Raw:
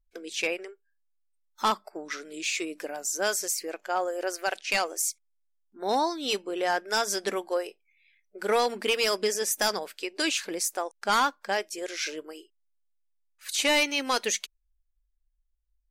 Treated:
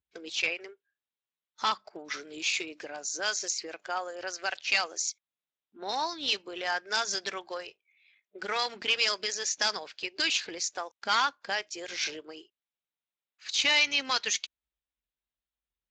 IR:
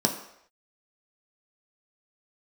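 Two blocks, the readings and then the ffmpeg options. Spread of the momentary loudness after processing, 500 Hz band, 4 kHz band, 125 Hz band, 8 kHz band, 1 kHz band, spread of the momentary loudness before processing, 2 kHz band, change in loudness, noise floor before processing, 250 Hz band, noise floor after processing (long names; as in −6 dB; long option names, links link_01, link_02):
13 LU, −9.5 dB, +1.5 dB, can't be measured, −3.0 dB, −4.5 dB, 11 LU, 0.0 dB, −1.5 dB, −73 dBFS, −9.5 dB, below −85 dBFS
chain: -filter_complex "[0:a]highshelf=frequency=2500:gain=8.5,acrossover=split=810[link_01][link_02];[link_01]acompressor=threshold=-37dB:ratio=12[link_03];[link_03][link_02]amix=inputs=2:normalize=0,volume=-3dB" -ar 16000 -c:a libspeex -b:a 21k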